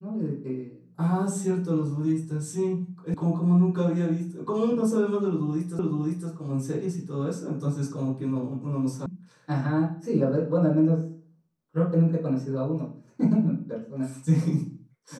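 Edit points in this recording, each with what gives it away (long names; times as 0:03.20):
0:03.14: cut off before it has died away
0:05.79: the same again, the last 0.51 s
0:09.06: cut off before it has died away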